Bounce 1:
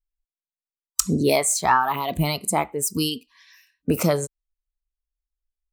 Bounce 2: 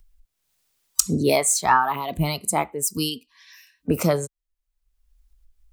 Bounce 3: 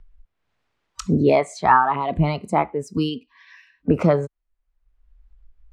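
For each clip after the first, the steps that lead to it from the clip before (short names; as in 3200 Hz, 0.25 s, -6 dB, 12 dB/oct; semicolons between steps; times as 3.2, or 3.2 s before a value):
upward compressor, threshold -26 dBFS; three-band expander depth 40%; gain -1 dB
LPF 1900 Hz 12 dB/oct; in parallel at -3 dB: compressor, threshold -28 dBFS, peak gain reduction 14 dB; on the sum: gain +2 dB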